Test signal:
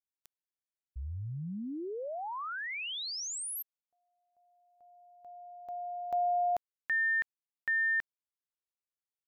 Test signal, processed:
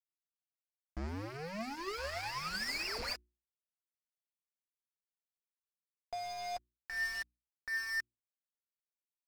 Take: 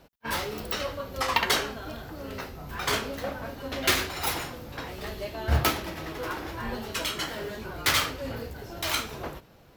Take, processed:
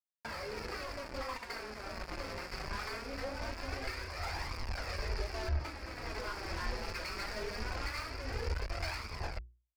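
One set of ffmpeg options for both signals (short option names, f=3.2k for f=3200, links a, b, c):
-af "aecho=1:1:1016|2032:0.1|0.022,aresample=11025,acrusher=bits=5:mix=0:aa=0.000001,aresample=44100,highpass=42,acompressor=threshold=-29dB:ratio=6:attack=3.3:release=665:knee=1:detection=rms,asuperstop=centerf=3400:order=8:qfactor=1.9,alimiter=level_in=4.5dB:limit=-24dB:level=0:latency=1:release=247,volume=-4.5dB,asoftclip=type=tanh:threshold=-36.5dB,asubboost=boost=9.5:cutoff=55,flanger=delay=0.8:depth=5.2:regen=38:speed=0.22:shape=triangular,aeval=exprs='sgn(val(0))*max(abs(val(0))-0.00133,0)':c=same,bandreject=f=60:t=h:w=6,bandreject=f=120:t=h:w=6,bandreject=f=180:t=h:w=6,bandreject=f=240:t=h:w=6,bandreject=f=300:t=h:w=6,bandreject=f=360:t=h:w=6,adynamicequalizer=threshold=0.00224:dfrequency=2900:dqfactor=0.7:tfrequency=2900:tqfactor=0.7:attack=5:release=100:ratio=0.375:range=3:mode=boostabove:tftype=highshelf,volume=7dB"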